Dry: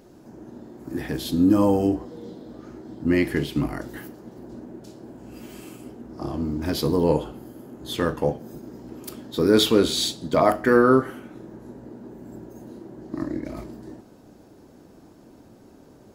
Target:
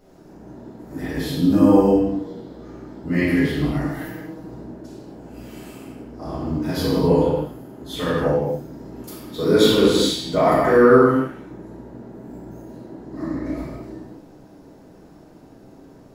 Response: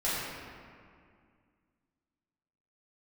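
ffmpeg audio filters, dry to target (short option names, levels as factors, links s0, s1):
-filter_complex "[0:a]asettb=1/sr,asplit=3[s0][s1][s2];[s0]atrim=end=3.854[s3];[s1]atrim=start=3.85:end=4.47,asetpts=PTS-STARTPTS,afade=t=in:d=0.004:c=qsin,afade=t=out:st=0.616:d=0.004:c=qsin,aecho=1:1:6.4:0.81,atrim=end_sample=27342[s4];[s2]atrim=start=4.466[s5];[s3][s4]acrossfade=d=0.004:c1=hsin:c2=qsin[s6];[s6][s5]acrossfade=d=0.004:c1=qsin:c2=hsin[s7];[1:a]atrim=start_sample=2205,afade=t=out:st=0.34:d=0.01,atrim=end_sample=15435[s8];[s7][s8]afir=irnorm=-1:irlink=0,volume=0.531"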